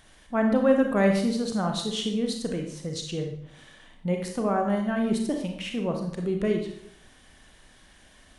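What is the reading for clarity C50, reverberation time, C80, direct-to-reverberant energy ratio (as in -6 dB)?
5.0 dB, 0.70 s, 8.5 dB, 2.5 dB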